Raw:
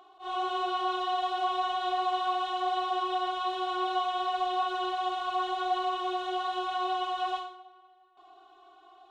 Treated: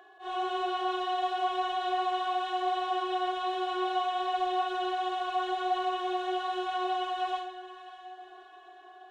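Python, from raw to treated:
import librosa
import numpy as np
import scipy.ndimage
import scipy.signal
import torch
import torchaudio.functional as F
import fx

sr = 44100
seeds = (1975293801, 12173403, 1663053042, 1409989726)

y = x + 10.0 ** (-60.0 / 20.0) * np.sin(2.0 * np.pi * 1700.0 * np.arange(len(x)) / sr)
y = fx.graphic_eq(y, sr, hz=(125, 250, 500, 1000, 2000, 4000), db=(-8, -4, 8, -6, 4, -4))
y = fx.echo_diffused(y, sr, ms=611, feedback_pct=48, wet_db=-14)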